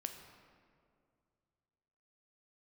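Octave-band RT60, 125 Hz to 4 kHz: 3.0, 2.5, 2.4, 2.1, 1.6, 1.2 s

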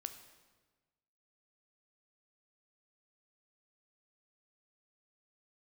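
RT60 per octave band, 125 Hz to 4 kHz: 1.6, 1.4, 1.4, 1.3, 1.2, 1.1 s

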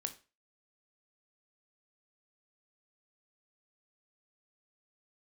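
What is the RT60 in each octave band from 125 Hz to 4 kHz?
0.30, 0.30, 0.35, 0.30, 0.30, 0.30 s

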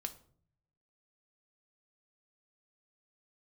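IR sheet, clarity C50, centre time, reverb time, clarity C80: 15.0 dB, 6 ms, 0.55 s, 19.0 dB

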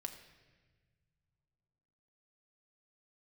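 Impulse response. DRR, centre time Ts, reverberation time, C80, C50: 4.5 dB, 18 ms, not exponential, 10.5 dB, 9.0 dB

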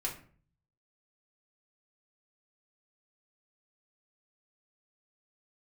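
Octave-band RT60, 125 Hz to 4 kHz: 0.90, 0.60, 0.50, 0.45, 0.40, 0.30 s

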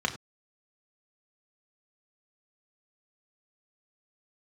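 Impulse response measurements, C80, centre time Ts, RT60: 15.5 dB, 11 ms, not exponential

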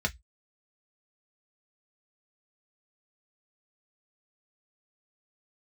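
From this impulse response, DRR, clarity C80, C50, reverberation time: 2.0 dB, 39.0 dB, 25.5 dB, 0.10 s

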